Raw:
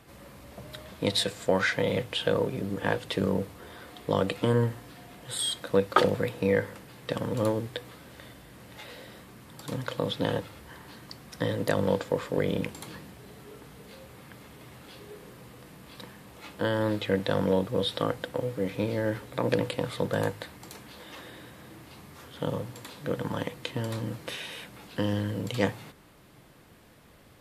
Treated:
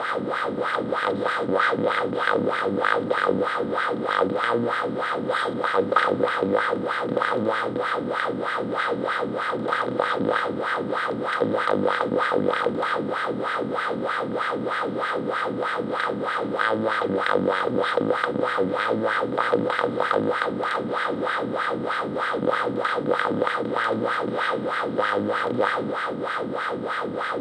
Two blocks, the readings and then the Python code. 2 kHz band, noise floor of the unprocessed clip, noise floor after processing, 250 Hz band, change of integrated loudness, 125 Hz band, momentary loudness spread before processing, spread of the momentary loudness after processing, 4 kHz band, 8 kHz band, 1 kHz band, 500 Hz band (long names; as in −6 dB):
+12.0 dB, −55 dBFS, −29 dBFS, +4.5 dB, +5.5 dB, −3.5 dB, 22 LU, 4 LU, +1.5 dB, can't be measured, +13.5 dB, +6.5 dB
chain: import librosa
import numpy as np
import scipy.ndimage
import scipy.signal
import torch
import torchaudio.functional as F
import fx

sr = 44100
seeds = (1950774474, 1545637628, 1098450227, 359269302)

y = fx.bin_compress(x, sr, power=0.2)
y = fx.wah_lfo(y, sr, hz=3.2, low_hz=230.0, high_hz=1700.0, q=2.6)
y = F.gain(torch.from_numpy(y), 2.5).numpy()